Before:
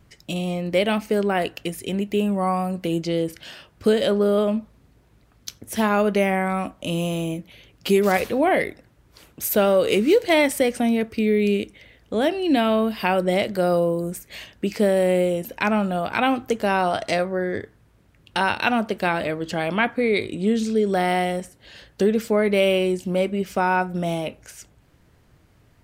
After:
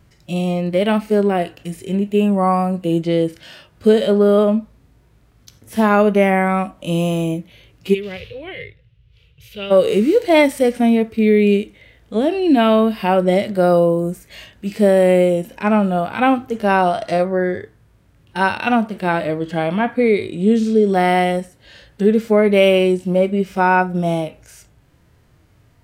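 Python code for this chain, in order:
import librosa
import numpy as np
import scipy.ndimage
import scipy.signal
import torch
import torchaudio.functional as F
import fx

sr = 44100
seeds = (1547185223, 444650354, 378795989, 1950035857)

y = fx.curve_eq(x, sr, hz=(130.0, 260.0, 480.0, 700.0, 1000.0, 1700.0, 2900.0, 7900.0), db=(0, -25, -10, -25, -21, -14, 3, -24), at=(7.93, 9.7), fade=0.02)
y = fx.hpss(y, sr, part='percussive', gain_db=-17)
y = y * 10.0 ** (6.5 / 20.0)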